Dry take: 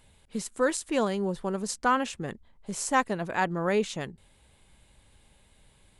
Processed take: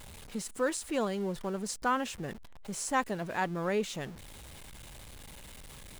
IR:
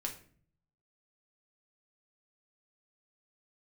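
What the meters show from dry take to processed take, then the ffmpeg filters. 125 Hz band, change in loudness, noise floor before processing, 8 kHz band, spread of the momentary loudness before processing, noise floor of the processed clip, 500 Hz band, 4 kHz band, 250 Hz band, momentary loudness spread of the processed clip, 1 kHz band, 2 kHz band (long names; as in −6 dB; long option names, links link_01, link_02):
−3.5 dB, −4.5 dB, −62 dBFS, −3.0 dB, 12 LU, −49 dBFS, −4.5 dB, −3.0 dB, −4.5 dB, 18 LU, −5.0 dB, −5.0 dB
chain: -af "aeval=exprs='val(0)+0.5*0.0126*sgn(val(0))':channel_layout=same,volume=-5.5dB"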